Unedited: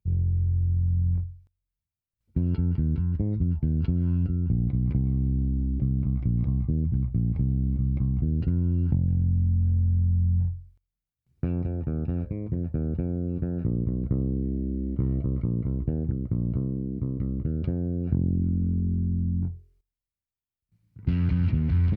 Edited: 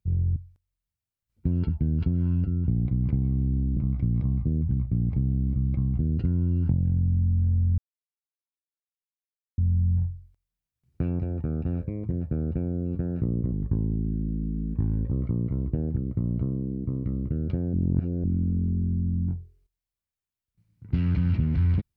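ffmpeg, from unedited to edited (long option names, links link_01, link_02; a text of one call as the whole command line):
ffmpeg -i in.wav -filter_complex "[0:a]asplit=9[link_01][link_02][link_03][link_04][link_05][link_06][link_07][link_08][link_09];[link_01]atrim=end=0.362[link_10];[link_02]atrim=start=1.268:end=2.602[link_11];[link_03]atrim=start=3.508:end=5.592[link_12];[link_04]atrim=start=5.998:end=10.01,asetpts=PTS-STARTPTS,afade=type=out:start_time=4.008:duration=0.004:curve=hsin,apad=pad_dur=1.8[link_13];[link_05]atrim=start=10.01:end=13.954,asetpts=PTS-STARTPTS,afade=type=in:duration=0.004:curve=hsin[link_14];[link_06]atrim=start=13.95:end=15.26,asetpts=PTS-STARTPTS,asetrate=36162,aresample=44100,atrim=end_sample=70452,asetpts=PTS-STARTPTS[link_15];[link_07]atrim=start=15.256:end=17.882[link_16];[link_08]atrim=start=17.878:end=18.382,asetpts=PTS-STARTPTS,areverse[link_17];[link_09]atrim=start=18.378[link_18];[link_10][link_11]acrossfade=duration=0.004:curve1=hsin:curve2=hsin[link_19];[link_19][link_12]acrossfade=duration=0.004:curve1=hsin:curve2=hsin[link_20];[link_13][link_14]concat=n=2:v=0:a=1[link_21];[link_20][link_21]acrossfade=duration=0.004:curve1=hsin:curve2=hsin[link_22];[link_22][link_15]acrossfade=duration=0.004:curve1=hsin:curve2=hsin[link_23];[link_23][link_16]acrossfade=duration=0.004:curve1=hsin:curve2=hsin[link_24];[link_24][link_17]acrossfade=duration=0.004:curve1=hsin:curve2=hsin[link_25];[link_25][link_18]acrossfade=duration=0.004:curve1=hsin:curve2=hsin" out.wav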